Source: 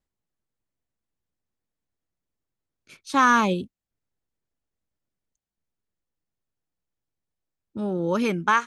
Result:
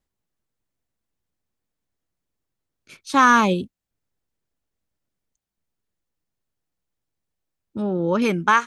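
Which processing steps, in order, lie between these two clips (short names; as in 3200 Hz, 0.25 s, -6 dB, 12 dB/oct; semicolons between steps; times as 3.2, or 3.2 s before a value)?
7.82–8.22 air absorption 140 m; gain +3.5 dB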